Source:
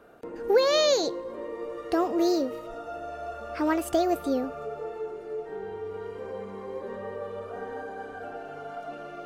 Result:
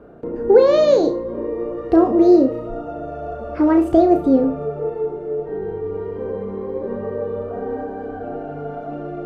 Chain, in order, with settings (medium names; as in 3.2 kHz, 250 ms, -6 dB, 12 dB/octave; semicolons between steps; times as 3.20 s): low-pass 2.3 kHz 6 dB/octave; tilt shelf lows +8.5 dB, about 700 Hz; flutter echo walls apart 5.8 m, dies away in 0.28 s; trim +7 dB